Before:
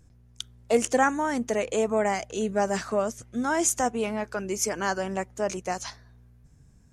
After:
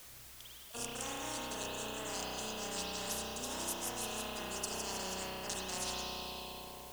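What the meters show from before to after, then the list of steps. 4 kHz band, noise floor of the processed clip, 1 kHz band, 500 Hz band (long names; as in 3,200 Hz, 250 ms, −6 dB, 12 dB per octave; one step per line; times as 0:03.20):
+0.5 dB, −53 dBFS, −14.0 dB, −18.0 dB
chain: brick-wall band-stop 1,100–2,500 Hz
reversed playback
downward compressor 20 to 1, threshold −37 dBFS, peak gain reduction 22 dB
reversed playback
low-shelf EQ 210 Hz +9 dB
on a send: echo with a time of its own for lows and highs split 650 Hz, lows 776 ms, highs 164 ms, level −7 dB
on the sum: noise gate −37 dBFS, range −37 dB
brickwall limiter −33.5 dBFS, peak gain reduction 8 dB
bass and treble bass −7 dB, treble −2 dB
spring reverb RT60 1.7 s, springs 32 ms, chirp 70 ms, DRR −9 dB
background noise white −75 dBFS
every bin compressed towards the loudest bin 4 to 1
level +4.5 dB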